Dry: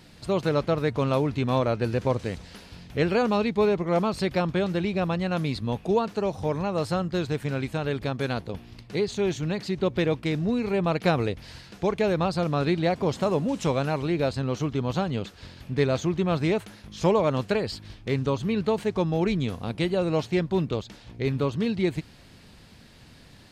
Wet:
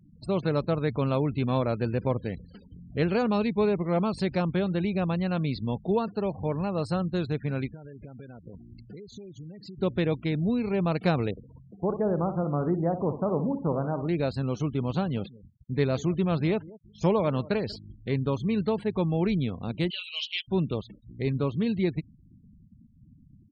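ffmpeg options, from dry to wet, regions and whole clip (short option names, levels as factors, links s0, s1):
-filter_complex "[0:a]asettb=1/sr,asplit=3[s0][s1][s2];[s0]atrim=end=7.674[s3];[s1]atrim=start=7.67:end=9.78,asetpts=PTS-STARTPTS,afade=t=in:d=0.004:c=qsin,afade=t=out:st=2.106:d=0.004:c=qsin,acompressor=threshold=0.0141:ratio=20:attack=3.2:release=140:knee=1:detection=peak,acrusher=bits=6:mode=log:mix=0:aa=0.000001[s4];[s2]atrim=start=9.776[s5];[s3][s4]acrossfade=d=0.004:c1=hsin:c2=qsin[s6];[s6][s5]acrossfade=d=0.004:c1=qsin:c2=hsin,asettb=1/sr,asplit=3[s7][s8][s9];[s7]atrim=end=11.314[s10];[s8]atrim=start=11.31:end=14.09,asetpts=PTS-STARTPTS,afade=t=in:d=0.004:c=qsin,afade=t=out:st=2.776:d=0.004:c=qsin,lowpass=f=1300:w=0.5412,lowpass=f=1300:w=1.3066,lowshelf=f=91:g=-7,aecho=1:1:61|122|183|244:0.316|0.12|0.0457|0.0174,atrim=end_sample=122598[s11];[s9]atrim=start=14.086[s12];[s10][s11]acrossfade=d=0.004:c1=hsin:c2=qsin[s13];[s13][s12]acrossfade=d=0.004:c1=qsin:c2=hsin,asettb=1/sr,asplit=3[s14][s15][s16];[s14]atrim=end=14.634[s17];[s15]atrim=start=14.63:end=17.76,asetpts=PTS-STARTPTS,afade=t=in:d=0.004:c=qsin,afade=t=out:st=3.126:d=0.004:c=qsin,agate=range=0.0224:threshold=0.0141:ratio=3:release=100:detection=peak,asplit=2[s18][s19];[s19]adelay=188,lowpass=f=2000:p=1,volume=0.1,asplit=2[s20][s21];[s21]adelay=188,lowpass=f=2000:p=1,volume=0.16[s22];[s18][s20][s22]amix=inputs=3:normalize=0,atrim=end_sample=138033[s23];[s16]atrim=start=17.756[s24];[s17][s23]acrossfade=d=0.004:c1=hsin:c2=qsin[s25];[s25][s24]acrossfade=d=0.004:c1=qsin:c2=hsin,asettb=1/sr,asplit=3[s26][s27][s28];[s26]atrim=end=19.904[s29];[s27]atrim=start=19.9:end=20.48,asetpts=PTS-STARTPTS,afade=t=in:d=0.004:c=qsin,afade=t=out:st=0.576:d=0.004:c=qsin,highpass=f=3000:t=q:w=9.4,aecho=1:1:4.7:0.5,atrim=end_sample=25578[s30];[s28]atrim=start=20.476[s31];[s29][s30]acrossfade=d=0.004:c1=hsin:c2=qsin[s32];[s32][s31]acrossfade=d=0.004:c1=qsin:c2=hsin,afftfilt=real='re*gte(hypot(re,im),0.0112)':imag='im*gte(hypot(re,im),0.0112)':win_size=1024:overlap=0.75,equalizer=f=180:t=o:w=1.5:g=4.5,volume=0.631"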